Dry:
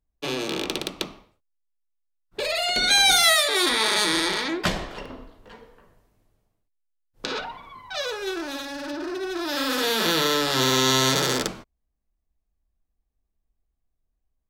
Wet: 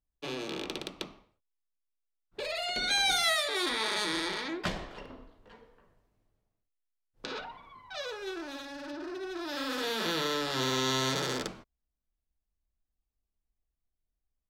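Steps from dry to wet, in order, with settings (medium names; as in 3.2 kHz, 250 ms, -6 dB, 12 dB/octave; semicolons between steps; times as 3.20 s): treble shelf 8 kHz -9 dB; trim -8.5 dB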